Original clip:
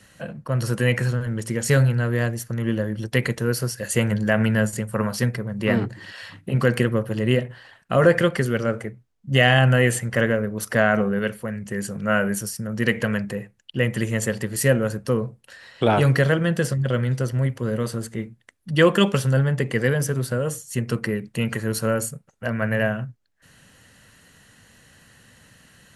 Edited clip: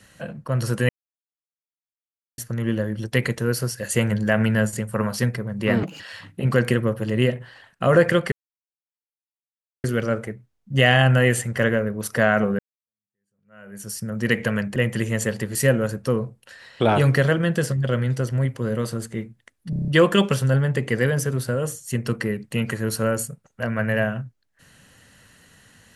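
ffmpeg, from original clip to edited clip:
-filter_complex "[0:a]asplit=14[s0][s1][s2][s3][s4][s5][s6][s7][s8][s9][s10][s11][s12][s13];[s0]atrim=end=0.89,asetpts=PTS-STARTPTS,afade=t=out:st=0.886:d=0.004:c=hsin[s14];[s1]atrim=start=0.89:end=2.38,asetpts=PTS-STARTPTS,volume=0[s15];[s2]atrim=start=2.38:end=5.834,asetpts=PTS-STARTPTS,afade=t=in:d=0.004:c=hsin[s16];[s3]atrim=start=5.83:end=6.09,asetpts=PTS-STARTPTS,asetrate=67914,aresample=44100,atrim=end_sample=7445,asetpts=PTS-STARTPTS[s17];[s4]atrim=start=6.086:end=8.41,asetpts=PTS-STARTPTS,afade=t=out:st=2.32:d=0.004:c=hsin,apad=pad_dur=1.52[s18];[s5]atrim=start=8.41:end=11.16,asetpts=PTS-STARTPTS,afade=t=in:d=0.004:c=hsin,afade=t=out:st=2.746:d=0.004:c=hsin[s19];[s6]atrim=start=11.16:end=13.332,asetpts=PTS-STARTPTS,afade=t=in:d=1.35:c=exp[s20];[s7]atrim=start=13.768:end=18.742[s21];[s8]atrim=start=18.708:end=18.742[s22];[s9]atrim=start=18.708:end=18.742[s23];[s10]atrim=start=18.708:end=18.742[s24];[s11]atrim=start=18.708:end=18.742[s25];[s12]atrim=start=18.708:end=18.742[s26];[s13]atrim=start=18.708[s27];[s14][s15][s16]concat=n=3:v=0:a=1[s28];[s28][s17]acrossfade=d=0.004:c1=hsin:c2=hsin[s29];[s18][s19][s20]concat=n=3:v=0:a=1[s30];[s29][s30]acrossfade=d=0.004:c1=hsin:c2=hsin[s31];[s31][s21]acrossfade=d=0.004:c1=hsin:c2=hsin[s32];[s32][s22]acrossfade=d=0.004:c1=hsin:c2=hsin[s33];[s33][s23]acrossfade=d=0.004:c1=hsin:c2=hsin[s34];[s34][s24]acrossfade=d=0.004:c1=hsin:c2=hsin[s35];[s35][s25]acrossfade=d=0.004:c1=hsin:c2=hsin[s36];[s36][s26]acrossfade=d=0.004:c1=hsin:c2=hsin[s37];[s37][s27]acrossfade=d=0.004:c1=hsin:c2=hsin"

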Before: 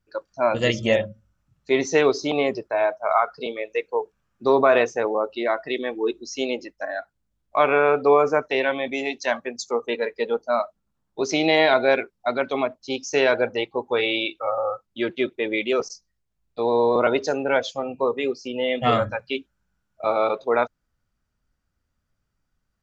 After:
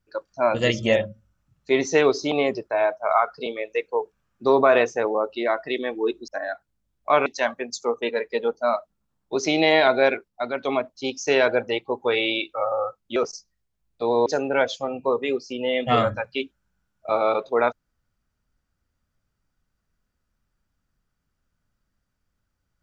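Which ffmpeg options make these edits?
-filter_complex "[0:a]asplit=7[s0][s1][s2][s3][s4][s5][s6];[s0]atrim=end=6.282[s7];[s1]atrim=start=6.748:end=7.732[s8];[s2]atrim=start=9.118:end=12.142[s9];[s3]atrim=start=12.138:end=12.492,asetpts=PTS-STARTPTS,volume=0.631[s10];[s4]atrim=start=12.488:end=15.022[s11];[s5]atrim=start=15.728:end=16.832[s12];[s6]atrim=start=17.208[s13];[s7][s8]acrossfade=d=0.004:c1=hsin:c2=hsin[s14];[s14][s9]acrossfade=d=0.004:c1=hsin:c2=hsin[s15];[s15][s10]acrossfade=d=0.004:c1=hsin:c2=hsin[s16];[s16][s11]acrossfade=d=0.004:c1=hsin:c2=hsin[s17];[s17][s12]acrossfade=d=0.004:c1=hsin:c2=hsin[s18];[s18][s13]acrossfade=d=0.004:c1=hsin:c2=hsin"

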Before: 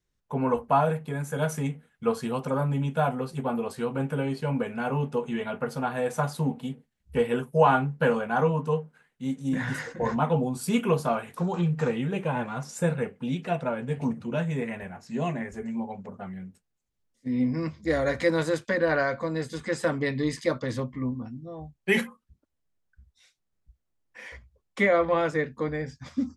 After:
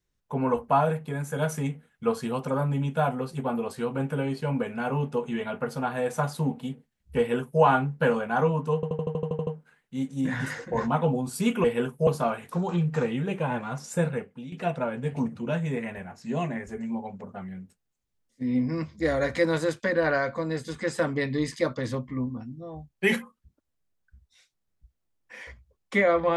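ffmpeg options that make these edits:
-filter_complex "[0:a]asplit=13[s0][s1][s2][s3][s4][s5][s6][s7][s8][s9][s10][s11][s12];[s0]atrim=end=8.832[s13];[s1]atrim=start=8.748:end=8.832[s14];[s2]atrim=start=8.748:end=8.832[s15];[s3]atrim=start=8.748:end=8.832[s16];[s4]atrim=start=8.748:end=8.832[s17];[s5]atrim=start=8.748:end=8.832[s18];[s6]atrim=start=8.748:end=8.832[s19];[s7]atrim=start=8.748:end=8.832[s20];[s8]atrim=start=8.748:end=8.832[s21];[s9]atrim=start=8.748:end=10.922[s22];[s10]atrim=start=7.178:end=7.612[s23];[s11]atrim=start=10.918:end=13.37,asetpts=PTS-STARTPTS,afade=t=out:st=2.002:d=0.45:silence=0.16788[s24];[s12]atrim=start=13.37,asetpts=PTS-STARTPTS,afade=t=in:d=0.004:c=hsin:silence=0.16788[s25];[s13][s14]acrossfade=d=0.004:c1=hsin:c2=hsin[s26];[s26][s15]acrossfade=d=0.004:c1=hsin:c2=hsin[s27];[s27][s16]acrossfade=d=0.004:c1=hsin:c2=hsin[s28];[s28][s17]acrossfade=d=0.004:c1=hsin:c2=hsin[s29];[s29][s18]acrossfade=d=0.004:c1=hsin:c2=hsin[s30];[s30][s19]acrossfade=d=0.004:c1=hsin:c2=hsin[s31];[s31][s20]acrossfade=d=0.004:c1=hsin:c2=hsin[s32];[s32][s21]acrossfade=d=0.004:c1=hsin:c2=hsin[s33];[s33][s22]acrossfade=d=0.004:c1=hsin:c2=hsin[s34];[s34][s23]acrossfade=d=0.004:c1=hsin:c2=hsin[s35];[s24][s25]concat=n=2:v=0:a=1[s36];[s35][s36]acrossfade=d=0.004:c1=hsin:c2=hsin"

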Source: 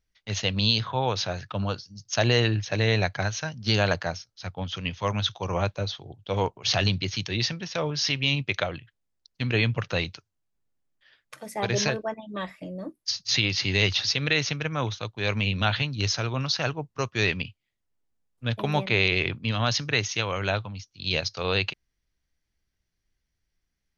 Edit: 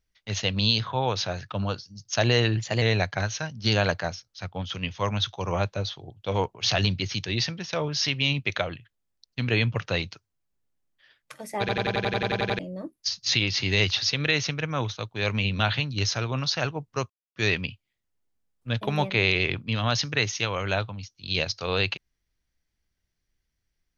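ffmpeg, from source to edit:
-filter_complex "[0:a]asplit=15[s0][s1][s2][s3][s4][s5][s6][s7][s8][s9][s10][s11][s12][s13][s14];[s0]atrim=end=2.574[s15];[s1]atrim=start=2.57:end=2.84,asetpts=PTS-STARTPTS,asetrate=48069,aresample=44100[s16];[s2]atrim=start=2.836:end=11.712[s17];[s3]atrim=start=11.618:end=11.712[s18];[s4]atrim=start=11.618:end=11.712[s19];[s5]atrim=start=11.618:end=11.712[s20];[s6]atrim=start=11.618:end=11.712[s21];[s7]atrim=start=11.618:end=11.712[s22];[s8]atrim=start=11.618:end=11.712[s23];[s9]atrim=start=11.618:end=11.712[s24];[s10]atrim=start=11.618:end=11.712[s25];[s11]atrim=start=11.618:end=11.712[s26];[s12]atrim=start=11.618:end=11.712[s27];[s13]atrim=start=12.608:end=17.12,asetpts=PTS-STARTPTS,afade=t=out:st=4.508:d=0.004:c=hsin,apad=pad_dur=0.26[s28];[s14]atrim=start=17.12,asetpts=PTS-STARTPTS,afade=t=in:d=0.004:c=hsin[s29];[s15][s16]acrossfade=d=0.004:c1=hsin:c2=hsin[s30];[s30][s17]acrossfade=d=0.004:c1=hsin:c2=hsin[s31];[s31][s18]acrossfade=d=0.004:c1=hsin:c2=hsin[s32];[s32][s19]acrossfade=d=0.004:c1=hsin:c2=hsin[s33];[s33][s20]acrossfade=d=0.004:c1=hsin:c2=hsin[s34];[s34][s21]acrossfade=d=0.004:c1=hsin:c2=hsin[s35];[s35][s22]acrossfade=d=0.004:c1=hsin:c2=hsin[s36];[s36][s23]acrossfade=d=0.004:c1=hsin:c2=hsin[s37];[s37][s24]acrossfade=d=0.004:c1=hsin:c2=hsin[s38];[s38][s25]acrossfade=d=0.004:c1=hsin:c2=hsin[s39];[s39][s26]acrossfade=d=0.004:c1=hsin:c2=hsin[s40];[s40][s27]acrossfade=d=0.004:c1=hsin:c2=hsin[s41];[s28][s29]concat=n=2:v=0:a=1[s42];[s41][s42]acrossfade=d=0.004:c1=hsin:c2=hsin"

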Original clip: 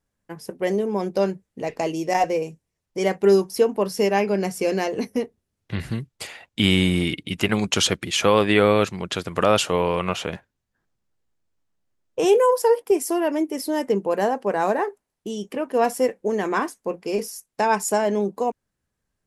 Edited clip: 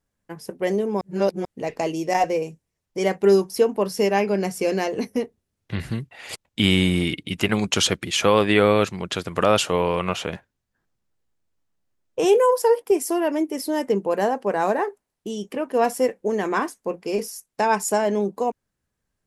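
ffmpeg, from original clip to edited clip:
-filter_complex "[0:a]asplit=5[s0][s1][s2][s3][s4];[s0]atrim=end=1.012[s5];[s1]atrim=start=1.008:end=1.452,asetpts=PTS-STARTPTS,areverse[s6];[s2]atrim=start=1.448:end=6.112[s7];[s3]atrim=start=6.108:end=6.452,asetpts=PTS-STARTPTS,areverse[s8];[s4]atrim=start=6.448[s9];[s5][s6]acrossfade=d=0.004:c1=hsin:c2=hsin[s10];[s10][s7]acrossfade=d=0.004:c1=hsin:c2=hsin[s11];[s11][s8]acrossfade=d=0.004:c1=hsin:c2=hsin[s12];[s12][s9]acrossfade=d=0.004:c1=hsin:c2=hsin"

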